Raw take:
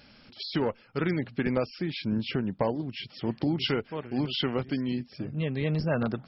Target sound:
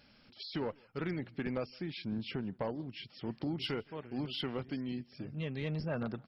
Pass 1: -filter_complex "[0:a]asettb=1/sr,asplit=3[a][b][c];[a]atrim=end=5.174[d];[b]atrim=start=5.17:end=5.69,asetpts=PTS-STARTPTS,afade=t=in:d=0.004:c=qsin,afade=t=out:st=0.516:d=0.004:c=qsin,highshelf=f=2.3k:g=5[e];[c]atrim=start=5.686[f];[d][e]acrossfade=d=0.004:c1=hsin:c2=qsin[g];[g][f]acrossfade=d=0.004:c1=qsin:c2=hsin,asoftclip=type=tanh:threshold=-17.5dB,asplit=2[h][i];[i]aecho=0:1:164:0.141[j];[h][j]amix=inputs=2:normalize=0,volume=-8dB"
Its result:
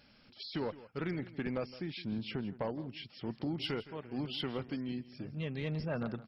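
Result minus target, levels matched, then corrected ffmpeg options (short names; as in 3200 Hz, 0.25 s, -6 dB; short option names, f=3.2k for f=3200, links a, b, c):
echo-to-direct +11.5 dB
-filter_complex "[0:a]asettb=1/sr,asplit=3[a][b][c];[a]atrim=end=5.174[d];[b]atrim=start=5.17:end=5.69,asetpts=PTS-STARTPTS,afade=t=in:d=0.004:c=qsin,afade=t=out:st=0.516:d=0.004:c=qsin,highshelf=f=2.3k:g=5[e];[c]atrim=start=5.686[f];[d][e]acrossfade=d=0.004:c1=hsin:c2=qsin[g];[g][f]acrossfade=d=0.004:c1=qsin:c2=hsin,asoftclip=type=tanh:threshold=-17.5dB,asplit=2[h][i];[i]aecho=0:1:164:0.0376[j];[h][j]amix=inputs=2:normalize=0,volume=-8dB"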